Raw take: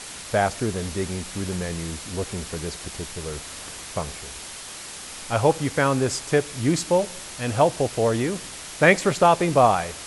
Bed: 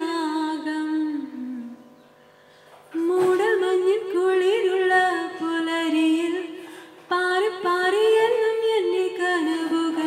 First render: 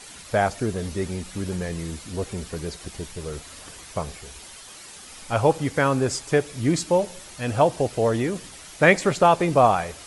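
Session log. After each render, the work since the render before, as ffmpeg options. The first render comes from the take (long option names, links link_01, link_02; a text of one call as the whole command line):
ffmpeg -i in.wav -af "afftdn=noise_reduction=8:noise_floor=-38" out.wav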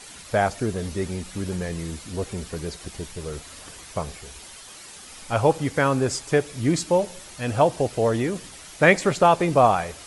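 ffmpeg -i in.wav -af anull out.wav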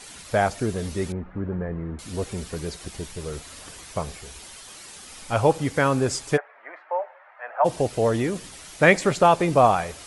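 ffmpeg -i in.wav -filter_complex "[0:a]asettb=1/sr,asplit=3[link_01][link_02][link_03];[link_01]atrim=end=1.124[link_04];[link_02]atrim=start=1.12:end=1.99,asetpts=PTS-STARTPTS,afade=type=in:duration=0.004:curve=qsin,afade=type=out:start_time=0.866:duration=0.004:curve=qsin,lowpass=frequency=1600:width=0.5412,lowpass=frequency=1600:width=1.3066[link_05];[link_03]atrim=start=1.986[link_06];[link_04][link_05]acrossfade=duration=0.004:curve1=hsin:curve2=qsin[link_07];[link_07][link_06]acrossfade=duration=0.004:curve1=qsin:curve2=hsin,asplit=3[link_08][link_09][link_10];[link_08]afade=type=out:start_time=6.36:duration=0.02[link_11];[link_09]asuperpass=centerf=1100:order=8:qfactor=0.81,afade=type=in:start_time=6.36:duration=0.02,afade=type=out:start_time=7.64:duration=0.02[link_12];[link_10]afade=type=in:start_time=7.64:duration=0.02[link_13];[link_11][link_12][link_13]amix=inputs=3:normalize=0" out.wav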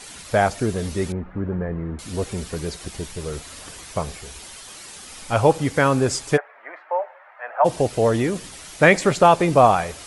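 ffmpeg -i in.wav -af "volume=3dB,alimiter=limit=-2dB:level=0:latency=1" out.wav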